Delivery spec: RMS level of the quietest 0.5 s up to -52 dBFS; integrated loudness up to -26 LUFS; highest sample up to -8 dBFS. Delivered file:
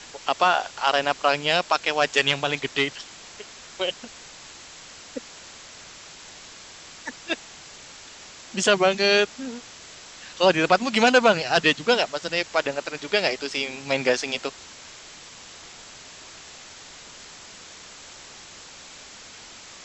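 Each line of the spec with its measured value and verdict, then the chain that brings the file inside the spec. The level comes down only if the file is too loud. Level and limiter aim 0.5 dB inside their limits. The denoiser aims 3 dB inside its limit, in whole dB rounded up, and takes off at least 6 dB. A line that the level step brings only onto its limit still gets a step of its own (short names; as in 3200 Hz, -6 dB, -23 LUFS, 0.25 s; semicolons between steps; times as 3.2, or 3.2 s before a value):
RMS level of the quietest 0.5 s -44 dBFS: fail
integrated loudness -22.5 LUFS: fail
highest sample -5.0 dBFS: fail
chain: denoiser 7 dB, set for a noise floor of -44 dBFS; gain -4 dB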